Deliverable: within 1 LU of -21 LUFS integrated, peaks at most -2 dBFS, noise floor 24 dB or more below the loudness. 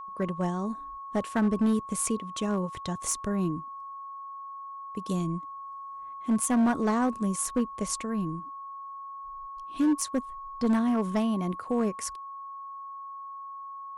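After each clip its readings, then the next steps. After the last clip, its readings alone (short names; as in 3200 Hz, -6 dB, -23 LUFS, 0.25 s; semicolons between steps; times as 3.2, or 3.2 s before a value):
clipped 1.5%; flat tops at -19.5 dBFS; steady tone 1100 Hz; tone level -38 dBFS; loudness -29.0 LUFS; peak -19.5 dBFS; loudness target -21.0 LUFS
-> clip repair -19.5 dBFS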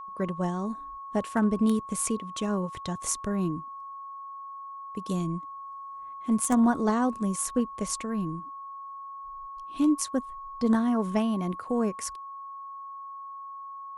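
clipped 0.0%; steady tone 1100 Hz; tone level -38 dBFS
-> notch 1100 Hz, Q 30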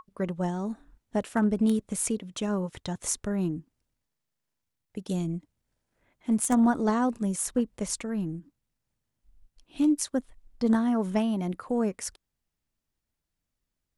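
steady tone none; loudness -28.5 LUFS; peak -10.5 dBFS; loudness target -21.0 LUFS
-> gain +7.5 dB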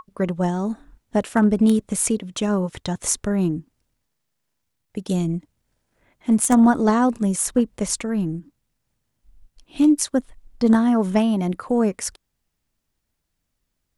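loudness -21.0 LUFS; peak -3.0 dBFS; noise floor -76 dBFS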